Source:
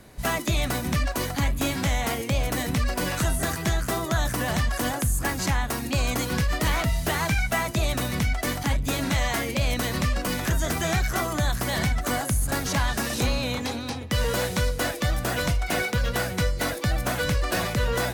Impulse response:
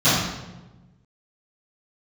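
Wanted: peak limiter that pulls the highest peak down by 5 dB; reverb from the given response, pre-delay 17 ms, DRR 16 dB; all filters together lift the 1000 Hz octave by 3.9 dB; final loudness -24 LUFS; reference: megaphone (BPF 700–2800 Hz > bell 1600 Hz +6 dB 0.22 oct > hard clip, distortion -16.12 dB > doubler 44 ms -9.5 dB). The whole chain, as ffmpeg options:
-filter_complex "[0:a]equalizer=f=1k:t=o:g=6.5,alimiter=limit=-16.5dB:level=0:latency=1,asplit=2[a][b];[1:a]atrim=start_sample=2205,adelay=17[c];[b][c]afir=irnorm=-1:irlink=0,volume=-37.5dB[d];[a][d]amix=inputs=2:normalize=0,highpass=700,lowpass=2.8k,equalizer=f=1.6k:t=o:w=0.22:g=6,asoftclip=type=hard:threshold=-24dB,asplit=2[e][f];[f]adelay=44,volume=-9.5dB[g];[e][g]amix=inputs=2:normalize=0,volume=5.5dB"

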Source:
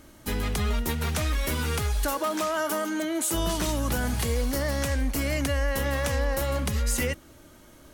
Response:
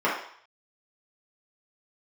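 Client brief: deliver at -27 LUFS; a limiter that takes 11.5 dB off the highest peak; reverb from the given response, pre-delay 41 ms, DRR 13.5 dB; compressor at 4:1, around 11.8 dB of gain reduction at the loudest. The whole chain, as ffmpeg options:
-filter_complex "[0:a]acompressor=threshold=-37dB:ratio=4,alimiter=level_in=11.5dB:limit=-24dB:level=0:latency=1,volume=-11.5dB,asplit=2[a][b];[1:a]atrim=start_sample=2205,adelay=41[c];[b][c]afir=irnorm=-1:irlink=0,volume=-29.5dB[d];[a][d]amix=inputs=2:normalize=0,volume=17dB"

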